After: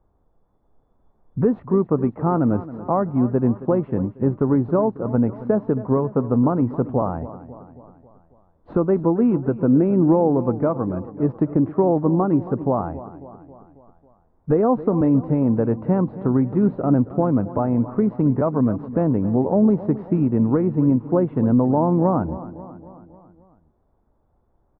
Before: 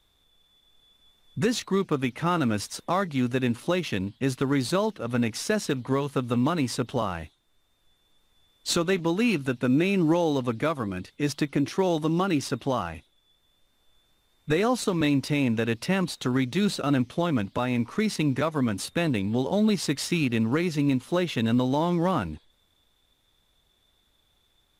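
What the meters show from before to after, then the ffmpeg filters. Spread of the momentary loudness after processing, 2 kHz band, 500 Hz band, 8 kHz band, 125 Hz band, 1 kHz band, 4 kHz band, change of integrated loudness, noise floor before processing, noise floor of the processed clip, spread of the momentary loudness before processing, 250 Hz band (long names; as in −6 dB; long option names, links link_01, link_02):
7 LU, below −10 dB, +6.5 dB, below −40 dB, +6.5 dB, +4.0 dB, below −35 dB, +6.0 dB, −68 dBFS, −64 dBFS, 5 LU, +6.5 dB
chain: -af "lowpass=frequency=1000:width=0.5412,lowpass=frequency=1000:width=1.3066,aecho=1:1:272|544|816|1088|1360:0.168|0.094|0.0526|0.0295|0.0165,volume=6.5dB"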